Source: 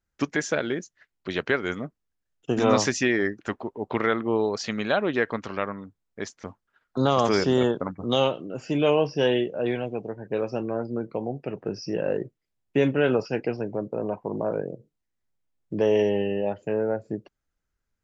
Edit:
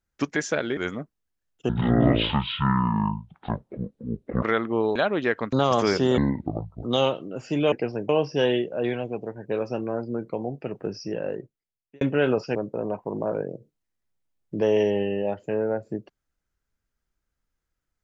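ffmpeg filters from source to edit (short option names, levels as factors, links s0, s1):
-filter_complex "[0:a]asplit=12[s0][s1][s2][s3][s4][s5][s6][s7][s8][s9][s10][s11];[s0]atrim=end=0.772[s12];[s1]atrim=start=1.608:end=2.534[s13];[s2]atrim=start=2.53:end=3.98,asetpts=PTS-STARTPTS,asetrate=23373,aresample=44100[s14];[s3]atrim=start=3.976:end=4.512[s15];[s4]atrim=start=4.868:end=5.442[s16];[s5]atrim=start=6.988:end=7.644[s17];[s6]atrim=start=7.64:end=8.02,asetpts=PTS-STARTPTS,asetrate=25578,aresample=44100,atrim=end_sample=28893,asetpts=PTS-STARTPTS[s18];[s7]atrim=start=8.016:end=8.912[s19];[s8]atrim=start=13.368:end=13.742[s20];[s9]atrim=start=8.908:end=12.83,asetpts=PTS-STARTPTS,afade=t=out:st=2.772:d=1.15[s21];[s10]atrim=start=12.83:end=13.372,asetpts=PTS-STARTPTS,afade=t=in:d=0.004:c=hsin[s22];[s11]atrim=start=13.738[s23];[s12][s13]acrossfade=d=0.004:c1=hsin:c2=hsin[s24];[s24][s14]acrossfade=d=0.004:c1=hsin:c2=hsin[s25];[s25][s15]acrossfade=d=0.004:c1=hsin:c2=hsin[s26];[s26][s16]acrossfade=d=0.004:c1=hsin:c2=hsin[s27];[s27][s17]acrossfade=d=0.004:c1=hsin:c2=hsin[s28];[s28][s18]acrossfade=d=0.004:c1=hsin:c2=hsin[s29];[s29][s19]acrossfade=d=0.004:c1=hsin:c2=hsin[s30];[s30][s20]acrossfade=d=0.004:c1=hsin:c2=hsin[s31];[s21][s22]concat=n=2:v=0:a=1[s32];[s31][s32]acrossfade=d=0.004:c1=hsin:c2=hsin[s33];[s33][s23]acrossfade=d=0.004:c1=hsin:c2=hsin"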